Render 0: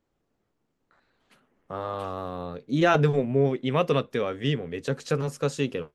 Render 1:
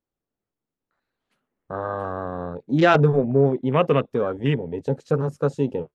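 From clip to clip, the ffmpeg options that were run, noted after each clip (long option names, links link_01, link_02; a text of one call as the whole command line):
ffmpeg -i in.wav -af "afwtdn=0.02,volume=4.5dB" out.wav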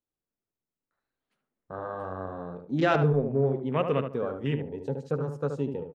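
ffmpeg -i in.wav -filter_complex "[0:a]asplit=2[link_01][link_02];[link_02]adelay=74,lowpass=frequency=1600:poles=1,volume=-6dB,asplit=2[link_03][link_04];[link_04]adelay=74,lowpass=frequency=1600:poles=1,volume=0.26,asplit=2[link_05][link_06];[link_06]adelay=74,lowpass=frequency=1600:poles=1,volume=0.26[link_07];[link_01][link_03][link_05][link_07]amix=inputs=4:normalize=0,volume=-8dB" out.wav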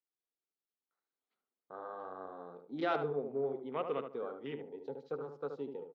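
ffmpeg -i in.wav -af "highpass=420,equalizer=frequency=590:width_type=q:width=4:gain=-7,equalizer=frequency=1000:width_type=q:width=4:gain=-4,equalizer=frequency=1700:width_type=q:width=4:gain=-9,equalizer=frequency=2700:width_type=q:width=4:gain=-9,lowpass=frequency=4200:width=0.5412,lowpass=frequency=4200:width=1.3066,volume=-4.5dB" out.wav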